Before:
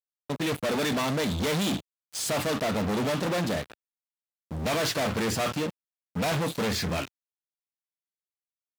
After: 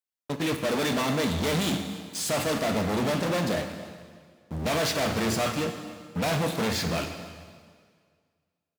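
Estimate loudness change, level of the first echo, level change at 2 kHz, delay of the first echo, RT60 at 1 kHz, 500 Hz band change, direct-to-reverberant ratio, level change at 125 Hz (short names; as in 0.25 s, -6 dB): +1.0 dB, -19.0 dB, +1.0 dB, 0.282 s, 1.9 s, +1.0 dB, 6.0 dB, +1.0 dB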